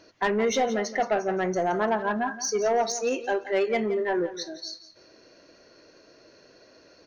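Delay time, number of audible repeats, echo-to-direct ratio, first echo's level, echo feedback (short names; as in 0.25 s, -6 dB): 0.172 s, 2, -13.5 dB, -14.0 dB, 25%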